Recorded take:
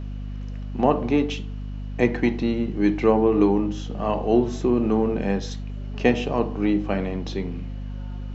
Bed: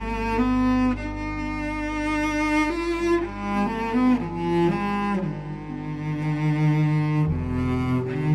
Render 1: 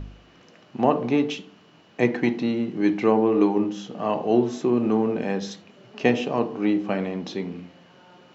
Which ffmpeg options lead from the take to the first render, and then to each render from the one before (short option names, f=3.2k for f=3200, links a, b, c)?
-af "bandreject=f=50:t=h:w=4,bandreject=f=100:t=h:w=4,bandreject=f=150:t=h:w=4,bandreject=f=200:t=h:w=4,bandreject=f=250:t=h:w=4,bandreject=f=300:t=h:w=4,bandreject=f=350:t=h:w=4,bandreject=f=400:t=h:w=4,bandreject=f=450:t=h:w=4,bandreject=f=500:t=h:w=4,bandreject=f=550:t=h:w=4"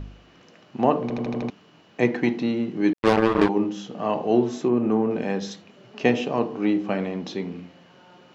-filter_complex "[0:a]asettb=1/sr,asplit=3[a][b][c];[a]atrim=end=2.934[d];[b]atrim=start=2.93:end=3.49,asetpts=PTS-STARTPTS,afade=t=in:d=0.004:c=qsin,afade=t=out:st=0.556:d=0.004:c=qsin,acrusher=bits=2:mix=0:aa=0.5[e];[c]atrim=start=3.486[f];[d][e]acrossfade=d=0.004:c1=hsin:c2=qsin[g];[g][f]acrossfade=d=0.004:c1=qsin:c2=hsin,asettb=1/sr,asplit=3[h][i][j];[h]atrim=end=4.684[k];[i]atrim=start=4.68:end=5.11,asetpts=PTS-STARTPTS,afade=t=in:d=0.004:c=qsin,afade=t=out:st=0.426:d=0.004:c=qsin,equalizer=f=4.3k:w=0.99:g=-9[l];[j]atrim=start=5.106[m];[k][l]acrossfade=d=0.004:c1=hsin:c2=qsin[n];[n][m]acrossfade=d=0.004:c1=qsin:c2=hsin,asplit=7[o][p][q][r][s][t][u];[o]atrim=end=1.102[v];[p]atrim=start=1.018:end=1.102[w];[q]atrim=start=1.018:end=1.102[x];[r]atrim=start=1.018:end=1.102[y];[s]atrim=start=1.018:end=1.102[z];[t]atrim=start=1.018:end=1.102[aa];[u]atrim=start=1.498[ab];[v][w]acrossfade=d=0.004:c1=hsin:c2=hsin[ac];[ac][x]acrossfade=d=0.004:c1=hsin:c2=hsin[ad];[ad][y]acrossfade=d=0.004:c1=hsin:c2=hsin[ae];[ae][z]acrossfade=d=0.004:c1=hsin:c2=hsin[af];[af][aa]acrossfade=d=0.004:c1=hsin:c2=hsin[ag];[ag][ab]acrossfade=d=0.004:c1=hsin:c2=hsin"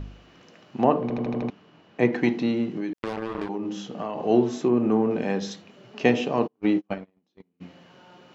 -filter_complex "[0:a]asettb=1/sr,asplit=3[a][b][c];[a]atrim=end=0.844[d];[b]atrim=start=0.84:end=2.13,asetpts=PTS-STARTPTS,afade=t=in:d=0.004:c=qsin,afade=t=out:st=1.286:d=0.004:c=qsin,lowpass=f=2.7k:p=1[e];[c]atrim=start=2.126[f];[d][e]acrossfade=d=0.004:c1=hsin:c2=qsin[g];[g][f]acrossfade=d=0.004:c1=qsin:c2=hsin,asettb=1/sr,asplit=3[h][i][j];[h]atrim=end=2.674[k];[i]atrim=start=2.67:end=4.24,asetpts=PTS-STARTPTS,afade=t=in:d=0.004:c=qsin,afade=t=out:st=1.566:d=0.004:c=qsin,acompressor=threshold=-25dB:ratio=16:attack=3.2:release=140:knee=1:detection=peak[l];[j]atrim=start=4.236[m];[k][l]acrossfade=d=0.004:c1=hsin:c2=qsin[n];[n][m]acrossfade=d=0.004:c1=qsin:c2=hsin,asplit=3[o][p][q];[o]afade=t=out:st=6.46:d=0.02[r];[p]agate=range=-41dB:threshold=-24dB:ratio=16:release=100:detection=peak,afade=t=in:st=6.46:d=0.02,afade=t=out:st=7.6:d=0.02[s];[q]afade=t=in:st=7.6:d=0.02[t];[r][s][t]amix=inputs=3:normalize=0"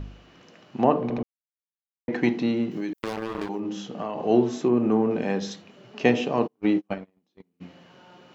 -filter_complex "[0:a]asettb=1/sr,asplit=3[a][b][c];[a]atrim=end=2.714[d];[b]atrim=start=2.71:end=3.6,asetpts=PTS-STARTPTS,afade=t=in:d=0.004:c=qsin,afade=t=out:st=0.886:d=0.004:c=qsin,aemphasis=mode=production:type=50fm[e];[c]atrim=start=3.596[f];[d][e]acrossfade=d=0.004:c1=hsin:c2=qsin[g];[g][f]acrossfade=d=0.004:c1=qsin:c2=hsin,asplit=3[h][i][j];[h]atrim=end=1.23,asetpts=PTS-STARTPTS,afade=t=out:st=1.226:d=0.004:c=hsin[k];[i]atrim=start=1.23:end=2.08,asetpts=PTS-STARTPTS,volume=0[l];[j]atrim=start=2.08,asetpts=PTS-STARTPTS,afade=t=in:d=0.004:c=hsin[m];[k][l][m]concat=n=3:v=0:a=1"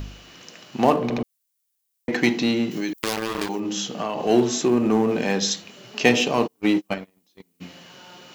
-filter_complex "[0:a]asplit=2[a][b];[b]asoftclip=type=hard:threshold=-22.5dB,volume=-9dB[c];[a][c]amix=inputs=2:normalize=0,crystalizer=i=5.5:c=0"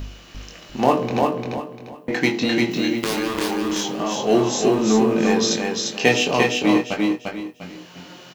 -filter_complex "[0:a]asplit=2[a][b];[b]adelay=23,volume=-5dB[c];[a][c]amix=inputs=2:normalize=0,asplit=2[d][e];[e]aecho=0:1:348|696|1044|1392:0.708|0.212|0.0637|0.0191[f];[d][f]amix=inputs=2:normalize=0"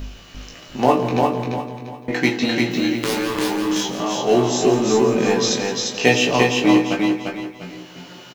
-filter_complex "[0:a]asplit=2[a][b];[b]adelay=16,volume=-6dB[c];[a][c]amix=inputs=2:normalize=0,aecho=1:1:170|340|510|680|850|1020:0.237|0.128|0.0691|0.0373|0.0202|0.0109"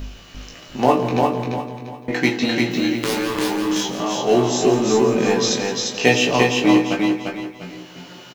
-af anull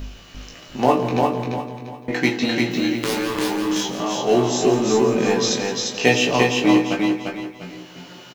-af "volume=-1dB"